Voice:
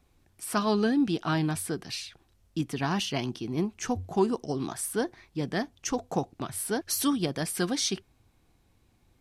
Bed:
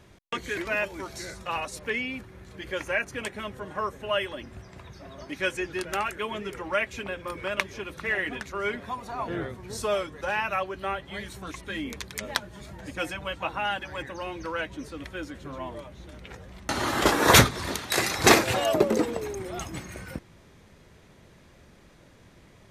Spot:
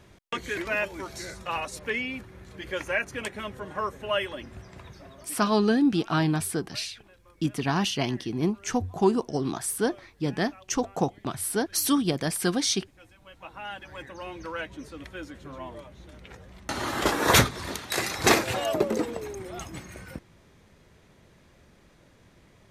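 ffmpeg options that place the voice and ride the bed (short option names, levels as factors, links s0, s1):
-filter_complex "[0:a]adelay=4850,volume=1.41[s0];[1:a]volume=10.6,afade=t=out:st=4.86:d=0.61:silence=0.0668344,afade=t=in:st=13.16:d=1.19:silence=0.0944061[s1];[s0][s1]amix=inputs=2:normalize=0"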